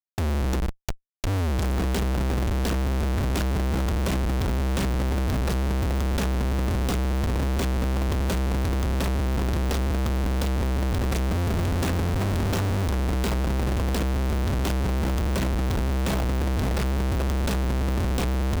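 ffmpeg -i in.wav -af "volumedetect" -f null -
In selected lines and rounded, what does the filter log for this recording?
mean_volume: -23.6 dB
max_volume: -17.7 dB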